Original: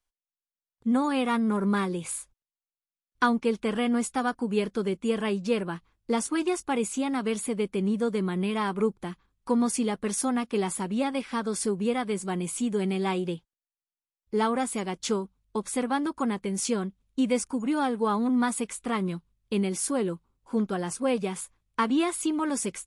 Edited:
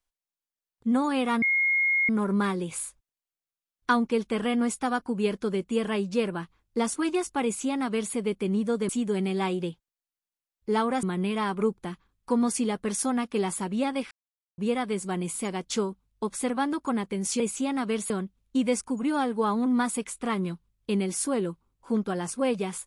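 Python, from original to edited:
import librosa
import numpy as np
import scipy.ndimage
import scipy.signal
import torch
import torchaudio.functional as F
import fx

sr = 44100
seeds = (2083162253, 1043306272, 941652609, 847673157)

y = fx.edit(x, sr, fx.insert_tone(at_s=1.42, length_s=0.67, hz=2150.0, db=-20.5),
    fx.duplicate(start_s=6.77, length_s=0.7, to_s=16.73),
    fx.silence(start_s=11.3, length_s=0.47),
    fx.move(start_s=12.54, length_s=2.14, to_s=8.22), tone=tone)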